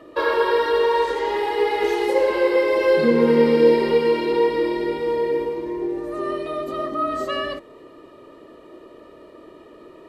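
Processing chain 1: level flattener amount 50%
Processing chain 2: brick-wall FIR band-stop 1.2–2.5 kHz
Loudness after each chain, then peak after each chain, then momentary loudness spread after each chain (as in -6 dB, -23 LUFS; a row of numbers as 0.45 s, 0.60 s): -16.0 LUFS, -20.5 LUFS; -3.5 dBFS, -4.5 dBFS; 14 LU, 12 LU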